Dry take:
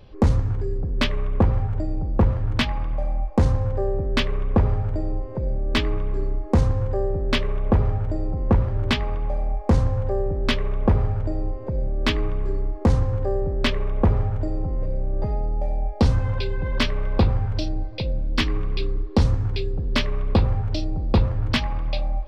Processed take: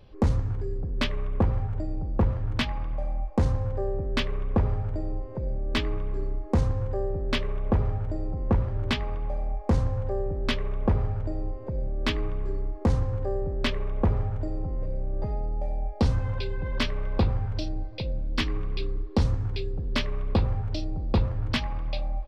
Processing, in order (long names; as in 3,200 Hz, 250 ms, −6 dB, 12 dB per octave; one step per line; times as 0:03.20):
downsampling to 32,000 Hz
level −5 dB